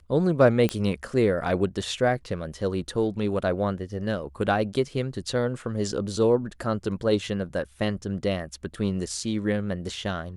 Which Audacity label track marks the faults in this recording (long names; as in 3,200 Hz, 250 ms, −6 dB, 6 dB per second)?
0.690000	0.690000	click −12 dBFS